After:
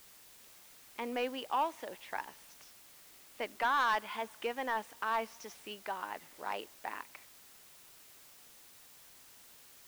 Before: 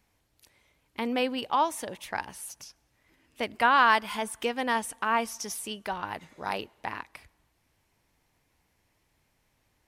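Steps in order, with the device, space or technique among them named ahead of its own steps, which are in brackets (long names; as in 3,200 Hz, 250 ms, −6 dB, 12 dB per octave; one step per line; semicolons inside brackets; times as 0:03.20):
tape answering machine (band-pass filter 320–3,200 Hz; soft clipping −18 dBFS, distortion −11 dB; tape wow and flutter; white noise bed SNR 18 dB)
level −5 dB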